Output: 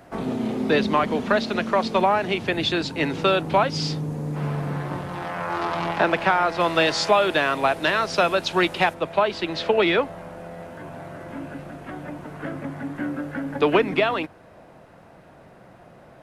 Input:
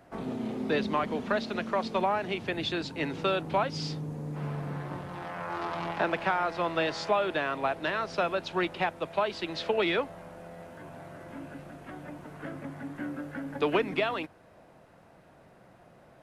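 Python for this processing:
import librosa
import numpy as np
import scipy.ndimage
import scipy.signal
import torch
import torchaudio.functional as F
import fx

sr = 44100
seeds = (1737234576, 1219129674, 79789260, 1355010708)

y = fx.high_shelf(x, sr, hz=4200.0, db=fx.steps((0.0, 2.0), (6.59, 10.0), (8.93, -3.5)))
y = y * 10.0 ** (8.0 / 20.0)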